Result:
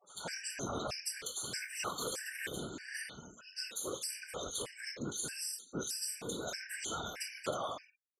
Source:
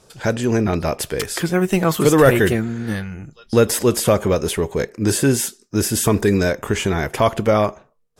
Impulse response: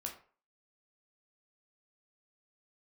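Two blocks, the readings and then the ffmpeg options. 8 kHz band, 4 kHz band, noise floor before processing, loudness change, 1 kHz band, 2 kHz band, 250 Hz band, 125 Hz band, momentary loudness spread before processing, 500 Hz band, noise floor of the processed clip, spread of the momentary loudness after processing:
−13.5 dB, −12.0 dB, −57 dBFS, −21.0 dB, −19.5 dB, −17.5 dB, −27.5 dB, −30.0 dB, 9 LU, −26.5 dB, −64 dBFS, 5 LU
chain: -filter_complex "[1:a]atrim=start_sample=2205,asetrate=40131,aresample=44100[link_01];[0:a][link_01]afir=irnorm=-1:irlink=0,afftfilt=real='hypot(re,im)*cos(2*PI*random(0))':imag='hypot(re,im)*sin(2*PI*random(1))':win_size=512:overlap=0.75,lowpass=7100,aderivative,bandreject=frequency=227.7:width_type=h:width=4,bandreject=frequency=455.4:width_type=h:width=4,bandreject=frequency=683.1:width_type=h:width=4,bandreject=frequency=910.8:width_type=h:width=4,bandreject=frequency=1138.5:width_type=h:width=4,bandreject=frequency=1366.2:width_type=h:width=4,bandreject=frequency=1593.9:width_type=h:width=4,bandreject=frequency=1821.6:width_type=h:width=4,bandreject=frequency=2049.3:width_type=h:width=4,bandreject=frequency=2277:width_type=h:width=4,bandreject=frequency=2504.7:width_type=h:width=4,bandreject=frequency=2732.4:width_type=h:width=4,acompressor=threshold=-43dB:ratio=20,lowshelf=frequency=99:gain=7.5,acrossover=split=150[link_02][link_03];[link_03]acompressor=threshold=-57dB:ratio=2[link_04];[link_02][link_04]amix=inputs=2:normalize=0,acrossover=split=2100[link_05][link_06];[link_06]adelay=70[link_07];[link_05][link_07]amix=inputs=2:normalize=0,afftfilt=real='re*gte(hypot(re,im),0.000158)':imag='im*gte(hypot(re,im),0.000158)':win_size=1024:overlap=0.75,aphaser=in_gain=1:out_gain=1:delay=4.3:decay=0.23:speed=1.2:type=sinusoidal,afftfilt=real='re*gt(sin(2*PI*1.6*pts/sr)*(1-2*mod(floor(b*sr/1024/1500),2)),0)':imag='im*gt(sin(2*PI*1.6*pts/sr)*(1-2*mod(floor(b*sr/1024/1500),2)),0)':win_size=1024:overlap=0.75,volume=17.5dB"

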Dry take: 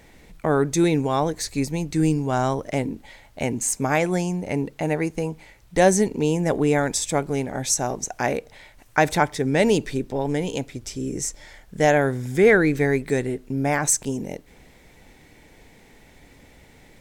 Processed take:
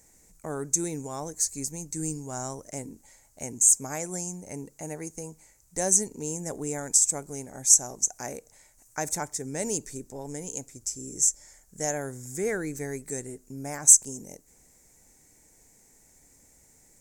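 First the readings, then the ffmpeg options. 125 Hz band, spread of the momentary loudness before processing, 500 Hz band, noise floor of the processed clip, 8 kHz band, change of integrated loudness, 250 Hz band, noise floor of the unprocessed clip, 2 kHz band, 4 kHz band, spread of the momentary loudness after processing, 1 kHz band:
−13.5 dB, 11 LU, −13.5 dB, −60 dBFS, +6.0 dB, −2.5 dB, −13.5 dB, −52 dBFS, −15.5 dB, −7.0 dB, 20 LU, −14.0 dB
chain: -af "highshelf=frequency=4900:width_type=q:width=3:gain=13.5,volume=-13.5dB"

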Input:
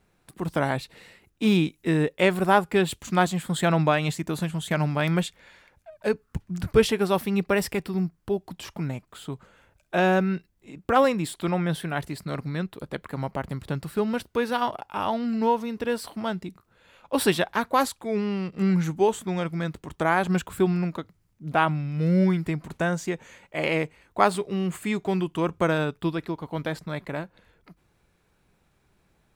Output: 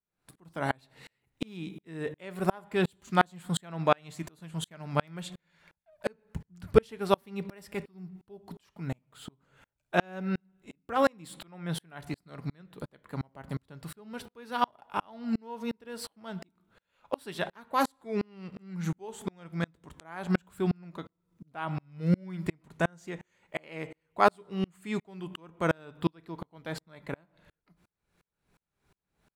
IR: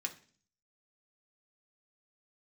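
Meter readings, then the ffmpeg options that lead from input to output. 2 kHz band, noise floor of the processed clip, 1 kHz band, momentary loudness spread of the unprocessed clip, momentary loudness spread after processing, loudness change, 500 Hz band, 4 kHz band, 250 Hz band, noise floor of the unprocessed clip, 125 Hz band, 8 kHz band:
−8.0 dB, −84 dBFS, −6.0 dB, 12 LU, 17 LU, −7.5 dB, −7.5 dB, −8.0 dB, −9.0 dB, −68 dBFS, −8.5 dB, −9.5 dB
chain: -filter_complex "[0:a]asplit=2[link_01][link_02];[1:a]atrim=start_sample=2205,asetrate=23814,aresample=44100[link_03];[link_02][link_03]afir=irnorm=-1:irlink=0,volume=-13dB[link_04];[link_01][link_04]amix=inputs=2:normalize=0,aeval=exprs='val(0)*pow(10,-37*if(lt(mod(-2.8*n/s,1),2*abs(-2.8)/1000),1-mod(-2.8*n/s,1)/(2*abs(-2.8)/1000),(mod(-2.8*n/s,1)-2*abs(-2.8)/1000)/(1-2*abs(-2.8)/1000))/20)':channel_layout=same"

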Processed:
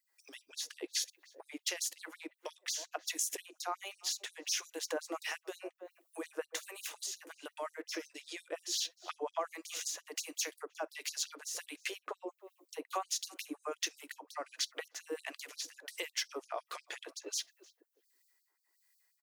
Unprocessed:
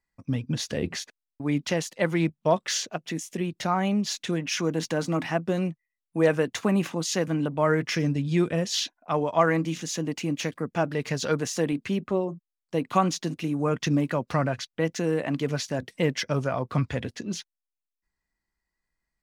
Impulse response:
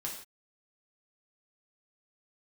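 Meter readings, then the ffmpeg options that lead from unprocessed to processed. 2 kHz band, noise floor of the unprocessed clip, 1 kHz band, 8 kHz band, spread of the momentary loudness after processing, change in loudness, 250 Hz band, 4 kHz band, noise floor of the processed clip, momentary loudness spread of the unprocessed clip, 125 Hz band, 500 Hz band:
−11.0 dB, below −85 dBFS, −14.0 dB, −3.0 dB, 12 LU, −12.5 dB, −24.0 dB, −5.5 dB, −80 dBFS, 8 LU, below −40 dB, −17.0 dB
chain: -filter_complex "[0:a]aemphasis=mode=production:type=50kf,asplit=2[link_01][link_02];[link_02]adelay=307,lowpass=frequency=920:poles=1,volume=-20dB,asplit=2[link_03][link_04];[link_04]adelay=307,lowpass=frequency=920:poles=1,volume=0.33,asplit=2[link_05][link_06];[link_06]adelay=307,lowpass=frequency=920:poles=1,volume=0.33[link_07];[link_01][link_03][link_05][link_07]amix=inputs=4:normalize=0,acompressor=threshold=-36dB:ratio=16,acrossover=split=1600[link_08][link_09];[link_08]aeval=exprs='val(0)*(1-0.7/2+0.7/2*cos(2*PI*1.4*n/s))':channel_layout=same[link_10];[link_09]aeval=exprs='val(0)*(1-0.7/2-0.7/2*cos(2*PI*1.4*n/s))':channel_layout=same[link_11];[link_10][link_11]amix=inputs=2:normalize=0,asplit=2[link_12][link_13];[1:a]atrim=start_sample=2205,atrim=end_sample=3087[link_14];[link_13][link_14]afir=irnorm=-1:irlink=0,volume=-20.5dB[link_15];[link_12][link_15]amix=inputs=2:normalize=0,afftfilt=real='re*gte(b*sr/1024,280*pow(3900/280,0.5+0.5*sin(2*PI*5.6*pts/sr)))':imag='im*gte(b*sr/1024,280*pow(3900/280,0.5+0.5*sin(2*PI*5.6*pts/sr)))':win_size=1024:overlap=0.75,volume=7dB"

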